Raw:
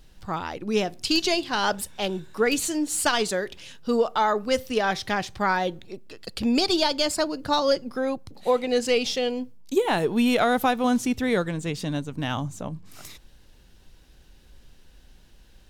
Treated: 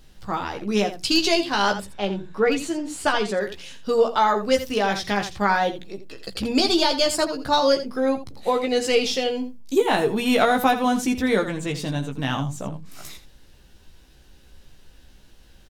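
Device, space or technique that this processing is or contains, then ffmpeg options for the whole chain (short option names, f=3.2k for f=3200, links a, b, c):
slapback doubling: -filter_complex "[0:a]asettb=1/sr,asplit=3[a][b][c];[a]atrim=end=1.724[d];[b]atrim=start=1.72:end=3.41,asetpts=PTS-STARTPTS,afade=t=in:d=0.004:c=qsin,afade=t=out:st=1.686:d=0.004:c=qsin,aemphasis=mode=reproduction:type=75kf[e];[c]atrim=start=3.406[f];[d][e]acrossfade=d=0.004:c1=hsin:c2=qsin[g];[g][f]acrossfade=d=0.004:c1=qsin:c2=hsin,asplit=3[h][i][j];[i]adelay=15,volume=-5dB[k];[j]adelay=83,volume=-11dB[l];[h][k][l]amix=inputs=3:normalize=0,bandreject=f=60:t=h:w=6,bandreject=f=120:t=h:w=6,bandreject=f=180:t=h:w=6,bandreject=f=240:t=h:w=6,volume=1.5dB"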